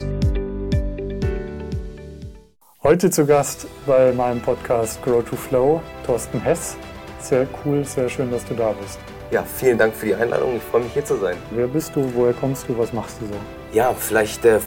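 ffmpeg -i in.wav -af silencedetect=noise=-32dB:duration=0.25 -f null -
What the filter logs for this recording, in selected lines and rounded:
silence_start: 2.35
silence_end: 2.84 | silence_duration: 0.49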